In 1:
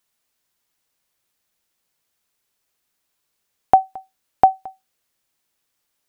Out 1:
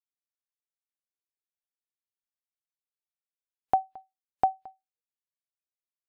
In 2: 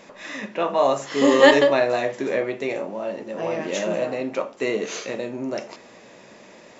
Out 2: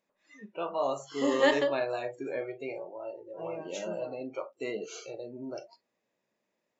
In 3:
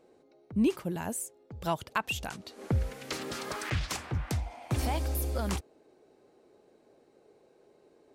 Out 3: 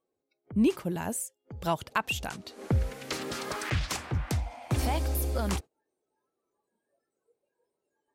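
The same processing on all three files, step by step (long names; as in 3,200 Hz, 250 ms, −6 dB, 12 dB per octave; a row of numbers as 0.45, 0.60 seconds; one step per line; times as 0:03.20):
noise reduction from a noise print of the clip's start 24 dB
normalise the peak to −12 dBFS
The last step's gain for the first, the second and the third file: −11.0, −11.0, +2.0 decibels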